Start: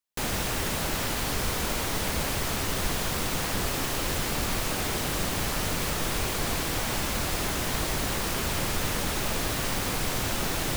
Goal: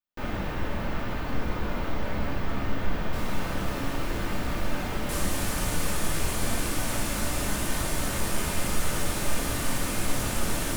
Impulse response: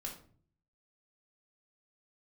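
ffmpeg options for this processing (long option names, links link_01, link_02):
-filter_complex "[0:a]acrossover=split=2700[link_01][link_02];[link_02]acompressor=threshold=-39dB:ratio=4:attack=1:release=60[link_03];[link_01][link_03]amix=inputs=2:normalize=0,asetnsamples=nb_out_samples=441:pad=0,asendcmd='3.13 equalizer g -2;5.09 equalizer g 13',equalizer=frequency=9500:width_type=o:width=1.6:gain=-14[link_04];[1:a]atrim=start_sample=2205[link_05];[link_04][link_05]afir=irnorm=-1:irlink=0"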